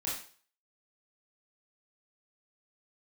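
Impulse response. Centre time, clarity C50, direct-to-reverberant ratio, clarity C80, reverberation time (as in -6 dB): 45 ms, 3.0 dB, -7.5 dB, 8.0 dB, 0.45 s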